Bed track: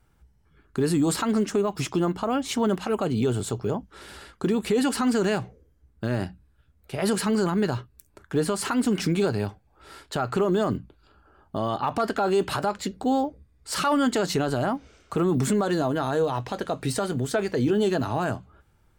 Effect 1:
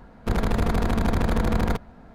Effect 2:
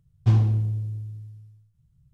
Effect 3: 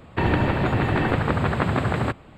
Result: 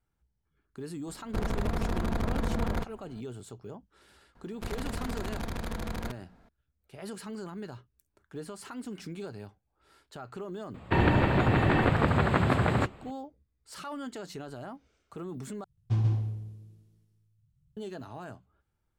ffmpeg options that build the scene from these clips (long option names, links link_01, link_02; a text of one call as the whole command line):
ffmpeg -i bed.wav -i cue0.wav -i cue1.wav -i cue2.wav -filter_complex "[1:a]asplit=2[link_01][link_02];[0:a]volume=-16.5dB[link_03];[link_02]highshelf=frequency=2000:gain=9[link_04];[2:a]aecho=1:1:136:0.668[link_05];[link_03]asplit=2[link_06][link_07];[link_06]atrim=end=15.644[link_08];[link_05]atrim=end=2.13,asetpts=PTS-STARTPTS,volume=-9dB[link_09];[link_07]atrim=start=17.766[link_10];[link_01]atrim=end=2.14,asetpts=PTS-STARTPTS,volume=-7.5dB,afade=type=in:duration=0.004:curve=hsin,afade=type=out:start_time=2.136:duration=0.004:curve=hsin,adelay=1070[link_11];[link_04]atrim=end=2.14,asetpts=PTS-STARTPTS,volume=-13.5dB,afade=type=in:duration=0.004:curve=hsin,afade=type=out:start_time=2.136:duration=0.004:curve=hsin,adelay=4350[link_12];[3:a]atrim=end=2.37,asetpts=PTS-STARTPTS,volume=-2.5dB,afade=type=in:duration=0.004:curve=hsin,afade=type=out:start_time=2.366:duration=0.004:curve=hsin,adelay=473634S[link_13];[link_08][link_09]acrossfade=duration=0.004:curve1=hsin:curve2=hsin[link_14];[link_14][link_10]acrossfade=duration=0.004:curve1=hsin:curve2=hsin[link_15];[link_15][link_11][link_12][link_13]amix=inputs=4:normalize=0" out.wav